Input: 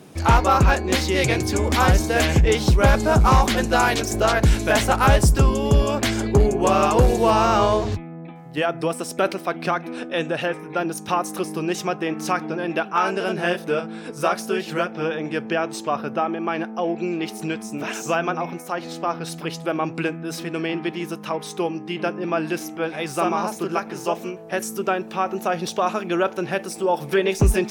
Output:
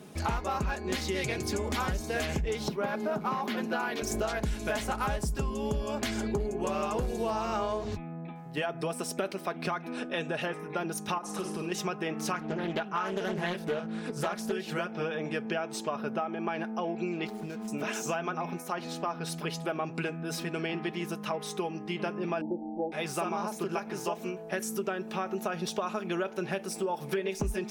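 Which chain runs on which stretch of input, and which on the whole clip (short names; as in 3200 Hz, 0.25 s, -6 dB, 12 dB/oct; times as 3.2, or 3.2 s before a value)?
2.68–4.02 HPF 170 Hz 24 dB/oct + bell 7900 Hz -15 dB 1.2 oct
11.18–11.72 LPF 9300 Hz + compressor 4:1, threshold -27 dBFS + flutter echo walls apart 8.4 m, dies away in 0.44 s
12.33–14.52 low shelf 160 Hz +8 dB + Doppler distortion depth 0.32 ms
17.27–17.68 median filter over 15 samples + compressor 3:1, threshold -31 dBFS
22.41–22.92 brick-wall FIR low-pass 1000 Hz + comb 3.6 ms, depth 95%
whole clip: comb 4.8 ms, depth 42%; compressor, threshold -24 dBFS; gain -4.5 dB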